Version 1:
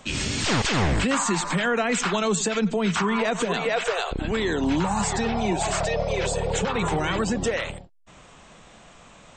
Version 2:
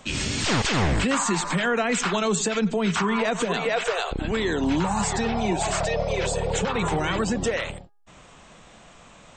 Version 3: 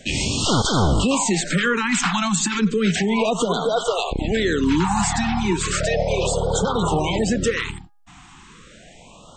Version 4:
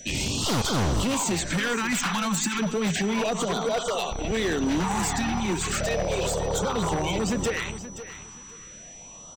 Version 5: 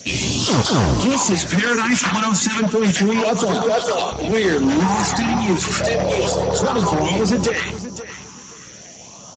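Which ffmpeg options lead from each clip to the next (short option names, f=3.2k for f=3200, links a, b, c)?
-af "bandreject=f=411:t=h:w=4,bandreject=f=822:t=h:w=4,bandreject=f=1.233k:t=h:w=4,bandreject=f=1.644k:t=h:w=4"
-af "afftfilt=real='re*(1-between(b*sr/1024,470*pow(2200/470,0.5+0.5*sin(2*PI*0.34*pts/sr))/1.41,470*pow(2200/470,0.5+0.5*sin(2*PI*0.34*pts/sr))*1.41))':imag='im*(1-between(b*sr/1024,470*pow(2200/470,0.5+0.5*sin(2*PI*0.34*pts/sr))/1.41,470*pow(2200/470,0.5+0.5*sin(2*PI*0.34*pts/sr))*1.41))':win_size=1024:overlap=0.75,volume=4.5dB"
-af "aeval=exprs='0.168*(abs(mod(val(0)/0.168+3,4)-2)-1)':c=same,aeval=exprs='val(0)+0.0126*sin(2*PI*5900*n/s)':c=same,aecho=1:1:526|1052|1578:0.211|0.0465|0.0102,volume=-4.5dB"
-filter_complex "[0:a]asplit=2[a][b];[b]adelay=16,volume=-11dB[c];[a][c]amix=inputs=2:normalize=0,volume=8dB" -ar 16000 -c:a libspeex -b:a 13k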